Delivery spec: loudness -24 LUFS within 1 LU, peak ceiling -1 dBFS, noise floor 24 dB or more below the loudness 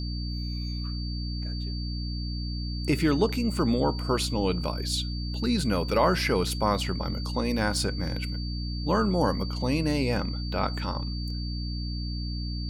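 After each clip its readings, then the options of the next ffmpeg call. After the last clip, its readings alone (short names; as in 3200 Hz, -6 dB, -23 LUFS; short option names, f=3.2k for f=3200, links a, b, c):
hum 60 Hz; harmonics up to 300 Hz; hum level -29 dBFS; steady tone 4600 Hz; tone level -39 dBFS; loudness -28.5 LUFS; peak -9.5 dBFS; loudness target -24.0 LUFS
-> -af "bandreject=f=60:t=h:w=6,bandreject=f=120:t=h:w=6,bandreject=f=180:t=h:w=6,bandreject=f=240:t=h:w=6,bandreject=f=300:t=h:w=6"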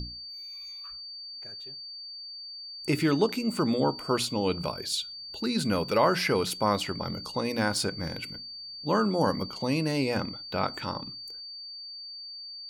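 hum none; steady tone 4600 Hz; tone level -39 dBFS
-> -af "bandreject=f=4.6k:w=30"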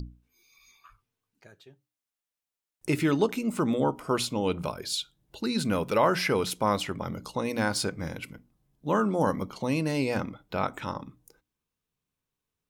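steady tone none; loudness -28.5 LUFS; peak -11.0 dBFS; loudness target -24.0 LUFS
-> -af "volume=4.5dB"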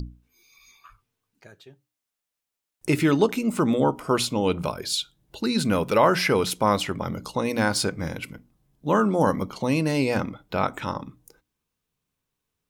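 loudness -24.0 LUFS; peak -6.5 dBFS; noise floor -85 dBFS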